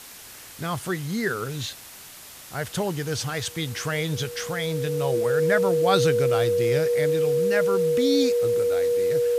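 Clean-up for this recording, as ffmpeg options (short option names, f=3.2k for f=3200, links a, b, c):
-af "bandreject=f=480:w=30,afwtdn=0.0079"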